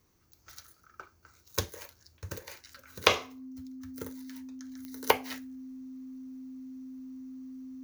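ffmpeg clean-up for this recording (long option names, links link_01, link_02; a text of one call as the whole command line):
ffmpeg -i in.wav -af "adeclick=threshold=4,bandreject=frequency=260:width=30" out.wav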